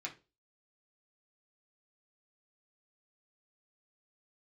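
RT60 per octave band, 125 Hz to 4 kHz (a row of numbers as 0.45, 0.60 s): 0.35, 0.30, 0.35, 0.25, 0.25, 0.25 s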